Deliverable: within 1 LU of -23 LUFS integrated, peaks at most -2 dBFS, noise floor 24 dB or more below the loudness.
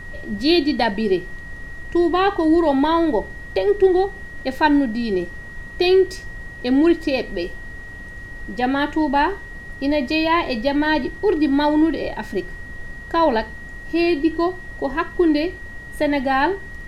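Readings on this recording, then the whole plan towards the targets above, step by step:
steady tone 1900 Hz; tone level -36 dBFS; noise floor -36 dBFS; noise floor target -44 dBFS; loudness -20.0 LUFS; peak -3.0 dBFS; loudness target -23.0 LUFS
-> notch 1900 Hz, Q 30; noise print and reduce 8 dB; gain -3 dB

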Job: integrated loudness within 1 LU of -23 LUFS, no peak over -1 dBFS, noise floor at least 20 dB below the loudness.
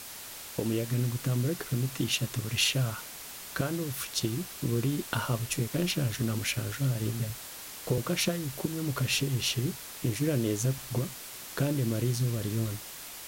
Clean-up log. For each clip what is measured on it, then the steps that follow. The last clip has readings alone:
noise floor -44 dBFS; noise floor target -51 dBFS; loudness -31.0 LUFS; peak -12.5 dBFS; loudness target -23.0 LUFS
-> noise print and reduce 7 dB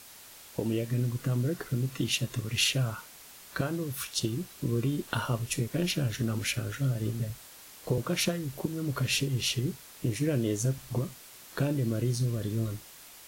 noise floor -51 dBFS; loudness -31.0 LUFS; peak -13.0 dBFS; loudness target -23.0 LUFS
-> gain +8 dB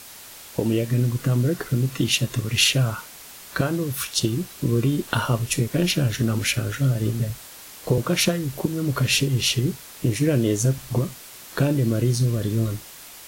loudness -23.0 LUFS; peak -5.0 dBFS; noise floor -43 dBFS

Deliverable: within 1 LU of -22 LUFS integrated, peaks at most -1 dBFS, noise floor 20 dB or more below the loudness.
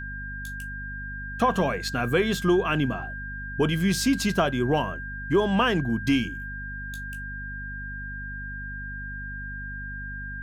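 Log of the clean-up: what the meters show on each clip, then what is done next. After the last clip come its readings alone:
hum 50 Hz; harmonics up to 250 Hz; hum level -35 dBFS; steady tone 1600 Hz; tone level -35 dBFS; loudness -27.5 LUFS; peak -10.0 dBFS; loudness target -22.0 LUFS
-> de-hum 50 Hz, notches 5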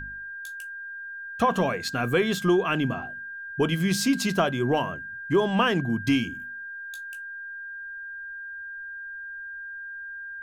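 hum none; steady tone 1600 Hz; tone level -35 dBFS
-> notch 1600 Hz, Q 30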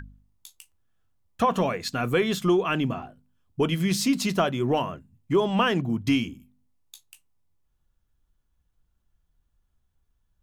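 steady tone none; loudness -25.0 LUFS; peak -10.5 dBFS; loudness target -22.0 LUFS
-> gain +3 dB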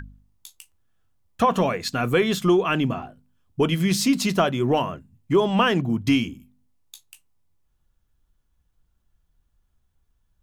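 loudness -22.0 LUFS; peak -7.5 dBFS; noise floor -70 dBFS

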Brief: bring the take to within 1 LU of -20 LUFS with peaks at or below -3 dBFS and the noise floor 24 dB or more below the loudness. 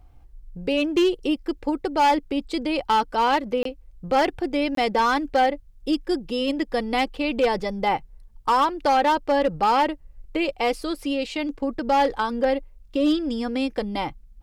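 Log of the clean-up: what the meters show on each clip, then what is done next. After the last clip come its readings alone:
clipped 1.4%; flat tops at -14.0 dBFS; dropouts 2; longest dropout 23 ms; loudness -23.5 LUFS; peak -14.0 dBFS; loudness target -20.0 LUFS
-> clip repair -14 dBFS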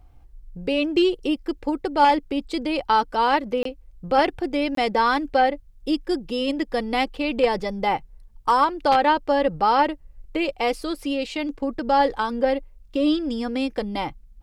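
clipped 0.0%; dropouts 2; longest dropout 23 ms
-> interpolate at 3.63/4.75, 23 ms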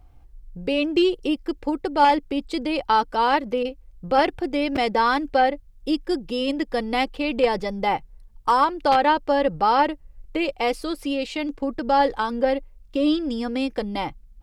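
dropouts 0; loudness -23.0 LUFS; peak -5.0 dBFS; loudness target -20.0 LUFS
-> gain +3 dB; limiter -3 dBFS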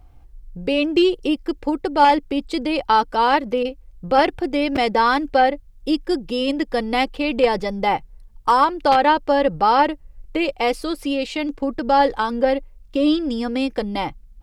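loudness -20.0 LUFS; peak -3.0 dBFS; noise floor -46 dBFS

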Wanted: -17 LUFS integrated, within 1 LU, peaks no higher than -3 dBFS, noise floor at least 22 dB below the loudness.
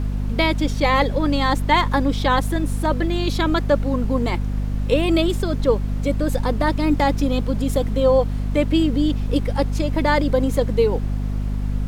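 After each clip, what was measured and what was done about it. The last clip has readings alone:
hum 50 Hz; harmonics up to 250 Hz; hum level -20 dBFS; noise floor -24 dBFS; noise floor target -43 dBFS; loudness -20.5 LUFS; peak -5.0 dBFS; loudness target -17.0 LUFS
-> notches 50/100/150/200/250 Hz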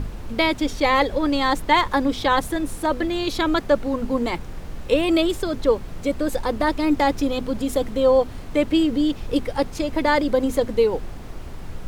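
hum none; noise floor -35 dBFS; noise floor target -44 dBFS
-> noise print and reduce 9 dB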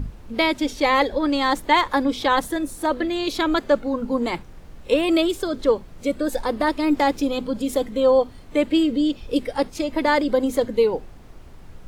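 noise floor -43 dBFS; noise floor target -44 dBFS
-> noise print and reduce 6 dB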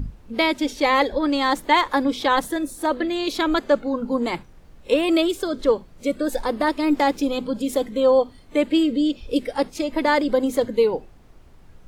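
noise floor -48 dBFS; loudness -22.0 LUFS; peak -6.0 dBFS; loudness target -17.0 LUFS
-> gain +5 dB; limiter -3 dBFS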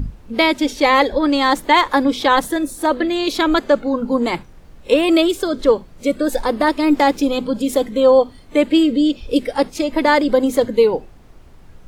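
loudness -17.0 LUFS; peak -3.0 dBFS; noise floor -43 dBFS

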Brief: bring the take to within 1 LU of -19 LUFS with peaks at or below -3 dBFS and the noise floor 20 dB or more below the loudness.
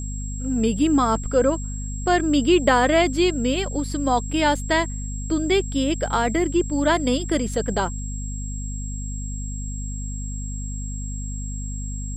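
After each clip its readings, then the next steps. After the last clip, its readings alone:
hum 50 Hz; harmonics up to 250 Hz; hum level -27 dBFS; steady tone 7600 Hz; tone level -36 dBFS; loudness -23.0 LUFS; peak -4.5 dBFS; loudness target -19.0 LUFS
-> notches 50/100/150/200/250 Hz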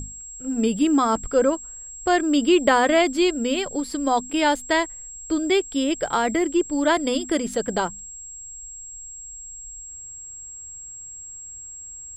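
hum none; steady tone 7600 Hz; tone level -36 dBFS
-> notch 7600 Hz, Q 30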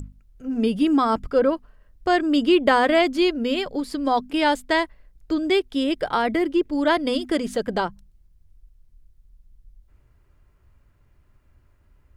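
steady tone none; loudness -22.0 LUFS; peak -5.0 dBFS; loudness target -19.0 LUFS
-> gain +3 dB; limiter -3 dBFS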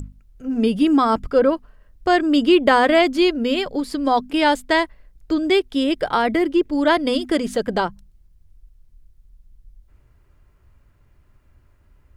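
loudness -19.0 LUFS; peak -3.0 dBFS; noise floor -57 dBFS

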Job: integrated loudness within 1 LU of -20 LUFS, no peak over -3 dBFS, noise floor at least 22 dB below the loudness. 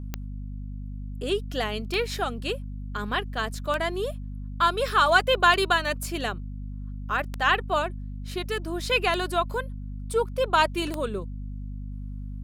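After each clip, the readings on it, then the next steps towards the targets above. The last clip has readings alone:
clicks 7; hum 50 Hz; harmonics up to 250 Hz; hum level -32 dBFS; loudness -26.0 LUFS; peak -6.0 dBFS; loudness target -20.0 LUFS
-> de-click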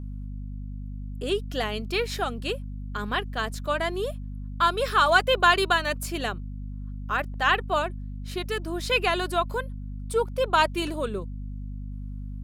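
clicks 0; hum 50 Hz; harmonics up to 250 Hz; hum level -32 dBFS
-> notches 50/100/150/200/250 Hz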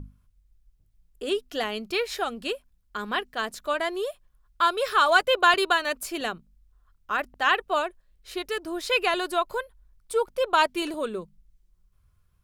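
hum none; loudness -26.0 LUFS; peak -6.0 dBFS; loudness target -20.0 LUFS
-> gain +6 dB; limiter -3 dBFS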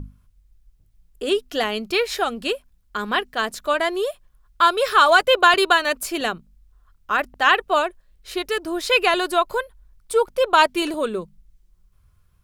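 loudness -20.0 LUFS; peak -3.0 dBFS; noise floor -60 dBFS

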